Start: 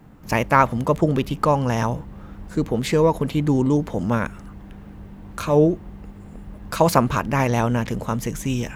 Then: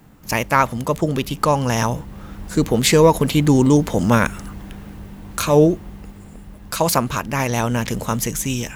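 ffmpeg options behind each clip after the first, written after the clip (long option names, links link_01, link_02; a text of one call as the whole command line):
ffmpeg -i in.wav -af "highshelf=frequency=3000:gain=11.5,dynaudnorm=framelen=220:gausssize=7:maxgain=11.5dB,volume=-1dB" out.wav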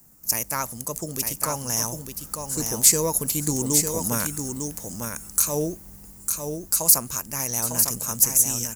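ffmpeg -i in.wav -af "aecho=1:1:902:0.531,aexciter=amount=11.4:drive=4.6:freq=5100,volume=-13.5dB" out.wav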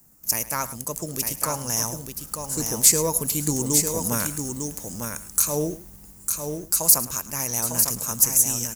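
ffmpeg -i in.wav -filter_complex "[0:a]aecho=1:1:107:0.158,asplit=2[link_01][link_02];[link_02]acrusher=bits=5:mix=0:aa=0.5,volume=-11dB[link_03];[link_01][link_03]amix=inputs=2:normalize=0,volume=-2dB" out.wav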